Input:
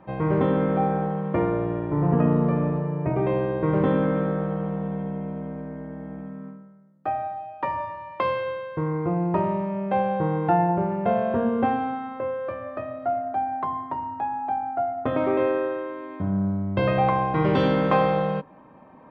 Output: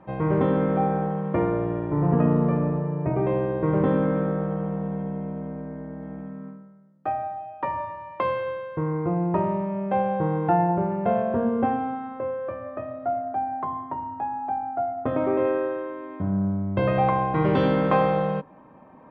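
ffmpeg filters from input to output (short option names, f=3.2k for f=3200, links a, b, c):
-af "asetnsamples=n=441:p=0,asendcmd='2.57 lowpass f 2000;6.03 lowpass f 3600;7.12 lowpass f 2300;11.22 lowpass f 1400;15.45 lowpass f 2100;16.94 lowpass f 3000',lowpass=f=3.4k:p=1"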